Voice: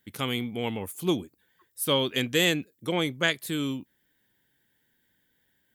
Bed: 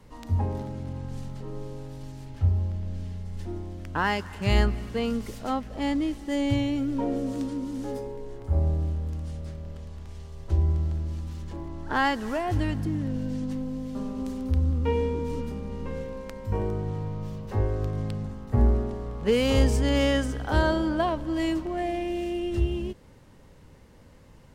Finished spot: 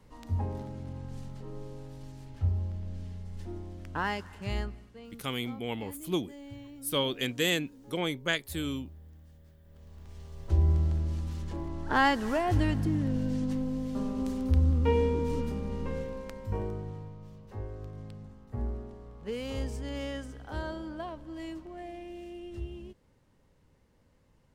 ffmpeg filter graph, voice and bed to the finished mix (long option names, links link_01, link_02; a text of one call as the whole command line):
ffmpeg -i stem1.wav -i stem2.wav -filter_complex "[0:a]adelay=5050,volume=-4.5dB[link_01];[1:a]volume=15dB,afade=type=out:start_time=4:duration=0.92:silence=0.177828,afade=type=in:start_time=9.65:duration=1.09:silence=0.0944061,afade=type=out:start_time=15.73:duration=1.44:silence=0.211349[link_02];[link_01][link_02]amix=inputs=2:normalize=0" out.wav